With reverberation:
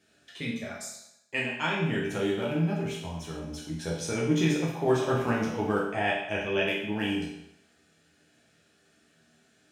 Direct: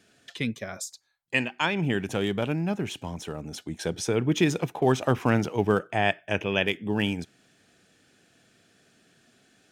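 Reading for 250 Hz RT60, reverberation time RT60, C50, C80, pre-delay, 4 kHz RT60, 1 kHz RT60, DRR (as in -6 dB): 0.75 s, 0.80 s, 3.0 dB, 6.0 dB, 9 ms, 0.75 s, 0.80 s, -5.0 dB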